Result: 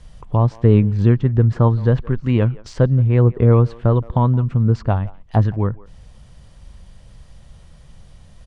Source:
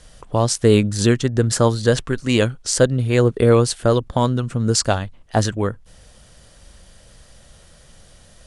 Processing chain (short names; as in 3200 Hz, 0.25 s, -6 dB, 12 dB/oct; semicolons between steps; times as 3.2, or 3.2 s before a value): treble ducked by the level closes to 1800 Hz, closed at -16 dBFS; de-esser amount 60%; EQ curve 150 Hz 0 dB, 260 Hz -7 dB, 590 Hz -11 dB, 990 Hz -5 dB, 1500 Hz -13 dB, 2200 Hz -9 dB, 12000 Hz -18 dB; speakerphone echo 0.17 s, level -21 dB; gain +6 dB